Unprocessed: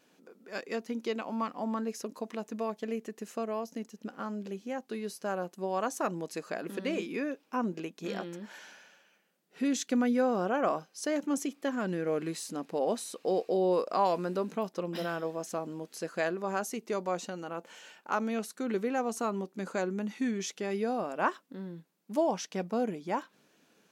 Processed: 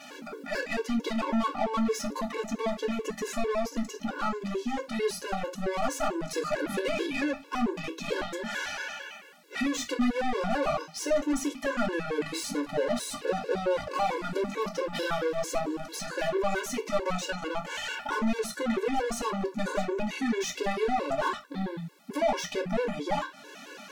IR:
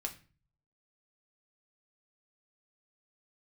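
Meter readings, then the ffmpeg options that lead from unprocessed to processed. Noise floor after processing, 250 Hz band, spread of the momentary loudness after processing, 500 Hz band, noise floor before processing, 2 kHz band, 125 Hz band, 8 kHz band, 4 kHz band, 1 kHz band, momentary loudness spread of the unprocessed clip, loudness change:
-48 dBFS, +2.0 dB, 6 LU, +2.5 dB, -68 dBFS, +6.5 dB, +2.5 dB, +4.5 dB, +8.0 dB, +3.0 dB, 11 LU, +2.5 dB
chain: -filter_complex "[0:a]acompressor=threshold=-52dB:ratio=1.5,asplit=2[a][b];[b]highpass=f=720:p=1,volume=28dB,asoftclip=type=tanh:threshold=-25.5dB[c];[a][c]amix=inputs=2:normalize=0,lowpass=f=3.7k:p=1,volume=-6dB[d];[1:a]atrim=start_sample=2205,atrim=end_sample=4410[e];[d][e]afir=irnorm=-1:irlink=0,afftfilt=real='re*gt(sin(2*PI*4.5*pts/sr)*(1-2*mod(floor(b*sr/1024/290),2)),0)':imag='im*gt(sin(2*PI*4.5*pts/sr)*(1-2*mod(floor(b*sr/1024/290),2)),0)':win_size=1024:overlap=0.75,volume=7dB"

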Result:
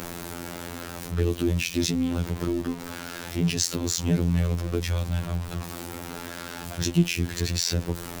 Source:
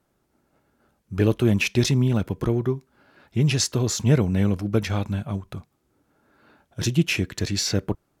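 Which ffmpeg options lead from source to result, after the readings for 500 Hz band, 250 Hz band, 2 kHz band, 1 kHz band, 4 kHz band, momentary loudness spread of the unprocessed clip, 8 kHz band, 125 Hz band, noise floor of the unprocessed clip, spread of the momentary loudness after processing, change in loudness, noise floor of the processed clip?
-5.0 dB, -3.0 dB, -3.5 dB, -0.5 dB, -1.5 dB, 12 LU, -0.5 dB, -4.0 dB, -71 dBFS, 12 LU, -4.5 dB, -38 dBFS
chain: -filter_complex "[0:a]aeval=exprs='val(0)+0.5*0.0473*sgn(val(0))':c=same,afftfilt=real='hypot(re,im)*cos(PI*b)':imag='0':win_size=2048:overlap=0.75,acrossover=split=380|3000[a][b][c];[b]acompressor=threshold=-34dB:ratio=6[d];[a][d][c]amix=inputs=3:normalize=0"

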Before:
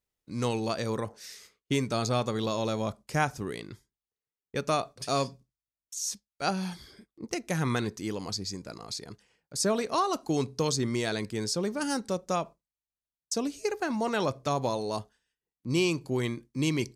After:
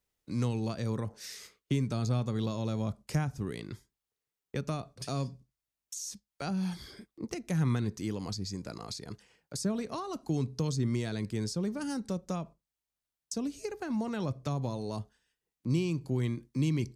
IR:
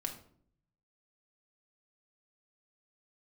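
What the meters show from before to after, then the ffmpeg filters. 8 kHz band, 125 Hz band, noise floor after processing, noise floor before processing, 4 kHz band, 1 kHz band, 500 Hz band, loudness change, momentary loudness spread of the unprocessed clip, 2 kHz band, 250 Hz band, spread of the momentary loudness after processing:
-7.5 dB, +2.5 dB, under -85 dBFS, under -85 dBFS, -8.0 dB, -10.5 dB, -7.5 dB, -3.5 dB, 10 LU, -9.5 dB, -1.5 dB, 11 LU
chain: -filter_complex "[0:a]acrossover=split=230[a][b];[b]acompressor=threshold=-43dB:ratio=4[c];[a][c]amix=inputs=2:normalize=0,volume=3.5dB"

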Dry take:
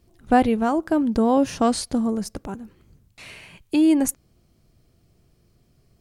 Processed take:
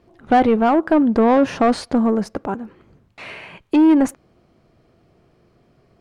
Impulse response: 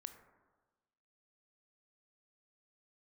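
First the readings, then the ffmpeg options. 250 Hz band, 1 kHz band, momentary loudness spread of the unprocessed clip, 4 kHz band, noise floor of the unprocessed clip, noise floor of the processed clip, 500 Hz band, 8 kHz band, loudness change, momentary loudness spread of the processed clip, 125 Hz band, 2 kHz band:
+4.0 dB, +5.0 dB, 14 LU, 0.0 dB, -62 dBFS, -59 dBFS, +5.5 dB, n/a, +4.0 dB, 15 LU, +3.0 dB, +5.5 dB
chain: -filter_complex "[0:a]highshelf=f=4.1k:g=-8.5,asplit=2[a][b];[b]highpass=f=720:p=1,volume=22dB,asoftclip=type=tanh:threshold=-4dB[c];[a][c]amix=inputs=2:normalize=0,lowpass=f=1.1k:p=1,volume=-6dB"

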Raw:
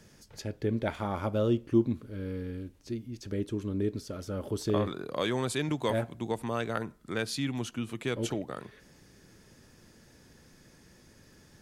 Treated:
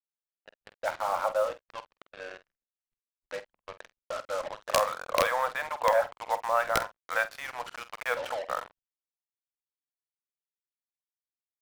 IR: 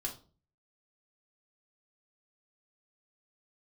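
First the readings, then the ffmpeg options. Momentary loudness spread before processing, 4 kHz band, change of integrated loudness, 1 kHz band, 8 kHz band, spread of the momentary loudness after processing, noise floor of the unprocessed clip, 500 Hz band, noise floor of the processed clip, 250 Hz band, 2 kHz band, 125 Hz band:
11 LU, +0.5 dB, +2.5 dB, +9.5 dB, +2.0 dB, 18 LU, -59 dBFS, +1.5 dB, under -85 dBFS, -21.5 dB, +7.5 dB, -21.0 dB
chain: -filter_complex "[0:a]asplit=2[a][b];[1:a]atrim=start_sample=2205,asetrate=42336,aresample=44100[c];[b][c]afir=irnorm=-1:irlink=0,volume=-15dB[d];[a][d]amix=inputs=2:normalize=0,afftfilt=real='re*between(b*sr/4096,470,6000)':imag='im*between(b*sr/4096,470,6000)':win_size=4096:overlap=0.75,aecho=1:1:70|140|210:0.0668|0.0314|0.0148,dynaudnorm=f=240:g=9:m=11.5dB,acrossover=split=600 2000:gain=0.158 1 0.0708[e][f][g];[e][f][g]amix=inputs=3:normalize=0,aeval=exprs='(mod(3.98*val(0)+1,2)-1)/3.98':c=same,acrusher=bits=5:mix=0:aa=0.5,anlmdn=0.0251,asplit=2[h][i];[i]adelay=48,volume=-13.5dB[j];[h][j]amix=inputs=2:normalize=0,adynamicequalizer=threshold=0.01:dfrequency=2100:dqfactor=0.7:tfrequency=2100:tqfactor=0.7:attack=5:release=100:ratio=0.375:range=3.5:mode=cutabove:tftype=highshelf"

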